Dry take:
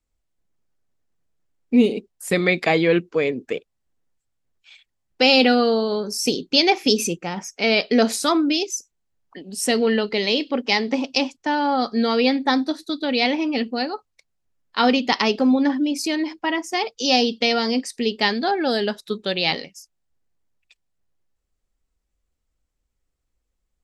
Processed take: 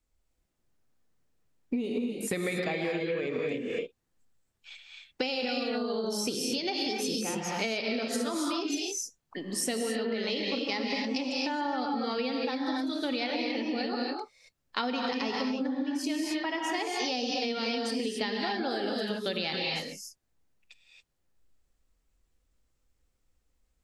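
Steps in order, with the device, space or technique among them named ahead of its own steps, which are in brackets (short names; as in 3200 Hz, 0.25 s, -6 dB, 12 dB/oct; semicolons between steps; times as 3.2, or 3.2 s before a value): non-linear reverb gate 0.3 s rising, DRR -0.5 dB; serial compression, leveller first (compressor, threshold -16 dBFS, peak gain reduction 8.5 dB; compressor 6:1, threshold -29 dBFS, peak gain reduction 13 dB)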